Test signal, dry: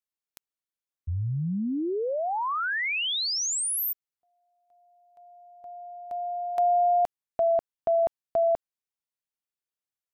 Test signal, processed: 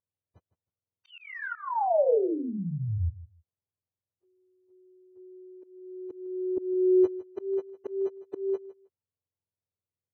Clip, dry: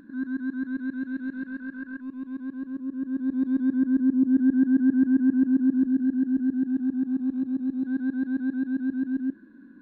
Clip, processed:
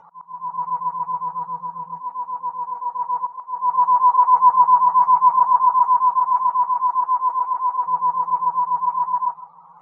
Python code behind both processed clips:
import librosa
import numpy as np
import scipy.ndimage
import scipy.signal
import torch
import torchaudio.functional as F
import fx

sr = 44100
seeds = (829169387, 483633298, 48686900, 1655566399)

y = fx.octave_mirror(x, sr, pivot_hz=510.0)
y = fx.graphic_eq(y, sr, hz=(125, 250, 500, 1000), db=(-5, -6, 9, 8))
y = fx.auto_swell(y, sr, attack_ms=429.0)
y = fx.air_absorb(y, sr, metres=70.0)
y = fx.echo_feedback(y, sr, ms=157, feedback_pct=17, wet_db=-17.0)